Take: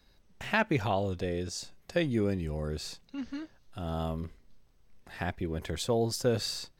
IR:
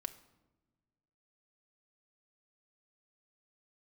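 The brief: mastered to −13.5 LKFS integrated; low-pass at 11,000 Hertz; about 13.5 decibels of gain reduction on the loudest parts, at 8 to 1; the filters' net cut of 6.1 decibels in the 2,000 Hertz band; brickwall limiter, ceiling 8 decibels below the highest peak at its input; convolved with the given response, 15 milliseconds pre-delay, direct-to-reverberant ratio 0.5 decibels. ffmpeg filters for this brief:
-filter_complex "[0:a]lowpass=11000,equalizer=frequency=2000:width_type=o:gain=-8,acompressor=threshold=-38dB:ratio=8,alimiter=level_in=10.5dB:limit=-24dB:level=0:latency=1,volume=-10.5dB,asplit=2[link_01][link_02];[1:a]atrim=start_sample=2205,adelay=15[link_03];[link_02][link_03]afir=irnorm=-1:irlink=0,volume=1.5dB[link_04];[link_01][link_04]amix=inputs=2:normalize=0,volume=28.5dB"

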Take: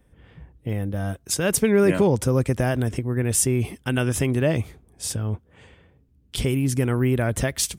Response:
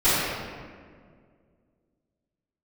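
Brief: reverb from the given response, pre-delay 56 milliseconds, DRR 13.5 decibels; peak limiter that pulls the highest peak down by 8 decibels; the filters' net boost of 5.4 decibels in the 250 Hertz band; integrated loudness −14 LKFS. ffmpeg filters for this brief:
-filter_complex "[0:a]equalizer=frequency=250:width_type=o:gain=6.5,alimiter=limit=-12.5dB:level=0:latency=1,asplit=2[link_01][link_02];[1:a]atrim=start_sample=2205,adelay=56[link_03];[link_02][link_03]afir=irnorm=-1:irlink=0,volume=-33dB[link_04];[link_01][link_04]amix=inputs=2:normalize=0,volume=9dB"

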